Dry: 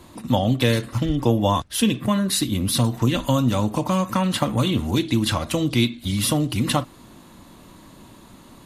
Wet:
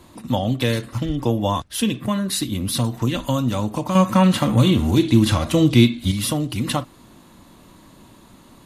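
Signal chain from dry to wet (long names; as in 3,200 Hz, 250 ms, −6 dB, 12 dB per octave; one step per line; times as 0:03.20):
0:03.95–0:06.12: harmonic and percussive parts rebalanced harmonic +9 dB
level −1.5 dB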